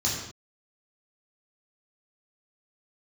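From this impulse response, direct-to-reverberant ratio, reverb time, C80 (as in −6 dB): −6.0 dB, non-exponential decay, 4.5 dB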